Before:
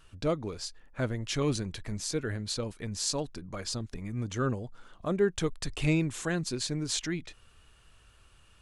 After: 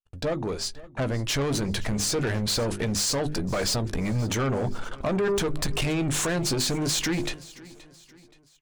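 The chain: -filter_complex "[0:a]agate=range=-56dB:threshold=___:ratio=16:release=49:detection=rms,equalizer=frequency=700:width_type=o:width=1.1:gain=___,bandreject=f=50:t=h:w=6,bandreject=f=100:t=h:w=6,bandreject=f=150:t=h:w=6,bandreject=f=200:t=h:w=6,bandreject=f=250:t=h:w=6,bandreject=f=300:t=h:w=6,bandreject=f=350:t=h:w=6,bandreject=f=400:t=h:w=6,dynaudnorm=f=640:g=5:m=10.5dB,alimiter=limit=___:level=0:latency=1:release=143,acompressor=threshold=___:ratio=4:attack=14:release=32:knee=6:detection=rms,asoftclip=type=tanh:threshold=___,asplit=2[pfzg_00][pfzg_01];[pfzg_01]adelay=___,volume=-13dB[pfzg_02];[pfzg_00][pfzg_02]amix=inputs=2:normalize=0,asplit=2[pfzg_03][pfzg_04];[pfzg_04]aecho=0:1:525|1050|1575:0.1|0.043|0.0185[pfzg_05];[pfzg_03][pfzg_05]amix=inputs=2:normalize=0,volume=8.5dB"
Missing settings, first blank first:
-51dB, 5.5, -11dB, -29dB, -31dB, 15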